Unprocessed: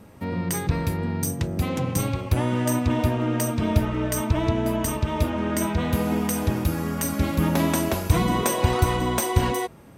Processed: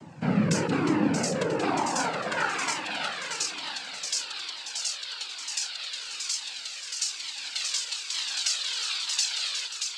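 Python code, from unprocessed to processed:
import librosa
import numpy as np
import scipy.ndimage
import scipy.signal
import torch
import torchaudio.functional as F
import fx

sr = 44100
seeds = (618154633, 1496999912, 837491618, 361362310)

y = fx.noise_vocoder(x, sr, seeds[0], bands=8)
y = fx.filter_sweep_highpass(y, sr, from_hz=130.0, to_hz=3800.0, start_s=0.18, end_s=3.24, q=2.0)
y = fx.echo_feedback(y, sr, ms=629, feedback_pct=43, wet_db=-5)
y = fx.comb_cascade(y, sr, direction='falling', hz=1.1)
y = y * librosa.db_to_amplitude(6.5)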